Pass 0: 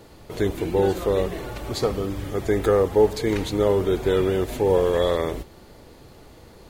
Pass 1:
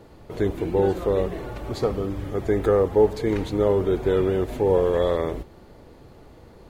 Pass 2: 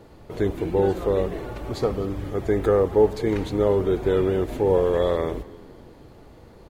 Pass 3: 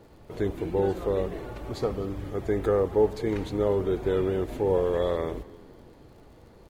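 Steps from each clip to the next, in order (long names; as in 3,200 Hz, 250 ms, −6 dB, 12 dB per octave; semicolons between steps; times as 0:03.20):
high-shelf EQ 2,500 Hz −10 dB
echo with shifted repeats 249 ms, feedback 51%, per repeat −55 Hz, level −21 dB
surface crackle 56 per second −46 dBFS; level −4.5 dB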